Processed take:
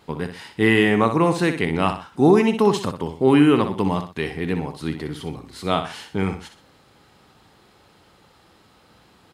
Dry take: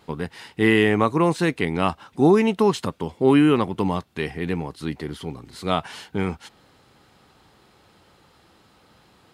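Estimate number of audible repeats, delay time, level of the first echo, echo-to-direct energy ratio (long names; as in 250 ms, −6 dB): 2, 62 ms, −9.0 dB, −8.5 dB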